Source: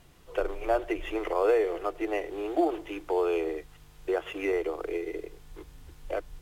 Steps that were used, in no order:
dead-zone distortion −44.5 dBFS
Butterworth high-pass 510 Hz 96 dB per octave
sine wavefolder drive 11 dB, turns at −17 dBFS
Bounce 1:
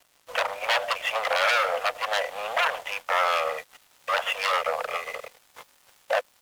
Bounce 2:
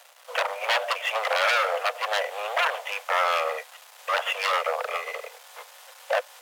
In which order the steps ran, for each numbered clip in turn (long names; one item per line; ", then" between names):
sine wavefolder, then Butterworth high-pass, then dead-zone distortion
sine wavefolder, then dead-zone distortion, then Butterworth high-pass